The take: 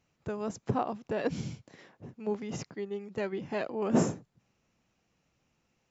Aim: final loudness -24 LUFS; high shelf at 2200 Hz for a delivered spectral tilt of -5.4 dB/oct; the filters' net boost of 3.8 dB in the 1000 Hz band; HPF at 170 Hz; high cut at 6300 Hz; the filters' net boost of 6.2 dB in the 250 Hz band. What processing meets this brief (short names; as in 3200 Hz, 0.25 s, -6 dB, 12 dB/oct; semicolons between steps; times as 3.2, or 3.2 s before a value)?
HPF 170 Hz; LPF 6300 Hz; bell 250 Hz +8.5 dB; bell 1000 Hz +5.5 dB; high shelf 2200 Hz -5 dB; gain +5.5 dB